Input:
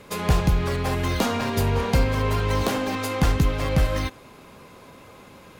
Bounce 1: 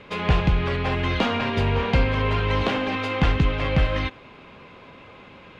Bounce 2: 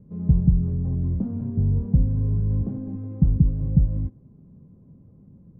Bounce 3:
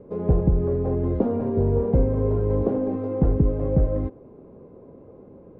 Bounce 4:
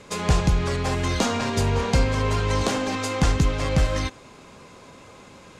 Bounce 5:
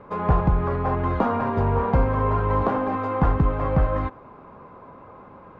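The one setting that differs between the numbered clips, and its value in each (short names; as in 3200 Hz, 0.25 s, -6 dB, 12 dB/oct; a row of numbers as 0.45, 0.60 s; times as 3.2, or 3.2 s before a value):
synth low-pass, frequency: 2900, 170, 440, 7400, 1100 Hz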